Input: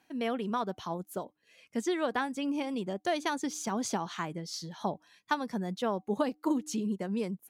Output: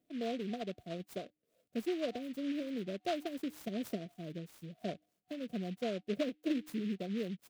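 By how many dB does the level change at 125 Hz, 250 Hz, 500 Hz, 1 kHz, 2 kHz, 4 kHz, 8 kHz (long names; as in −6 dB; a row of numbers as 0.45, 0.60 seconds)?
−4.5, −4.5, −4.5, −12.5, −10.5, −6.5, −16.0 decibels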